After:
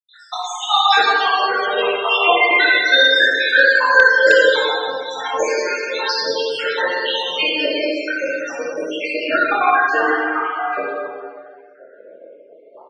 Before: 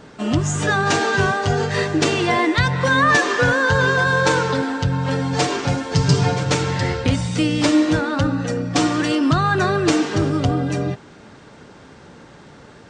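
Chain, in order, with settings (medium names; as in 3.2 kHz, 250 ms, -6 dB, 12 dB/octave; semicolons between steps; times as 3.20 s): random holes in the spectrogram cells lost 84%; 3.50–5.60 s: peaking EQ 7.1 kHz +5.5 dB 0.8 oct; reverberation RT60 1.9 s, pre-delay 7 ms, DRR -8 dB; loudest bins only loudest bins 64; high-pass 470 Hz 24 dB/octave; delay 73 ms -21.5 dB; wavefolder -7 dBFS; low-pass sweep 3.8 kHz -> 740 Hz, 8.35–12.23 s; dynamic bell 5.1 kHz, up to -3 dB, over -35 dBFS, Q 0.84; trim +4.5 dB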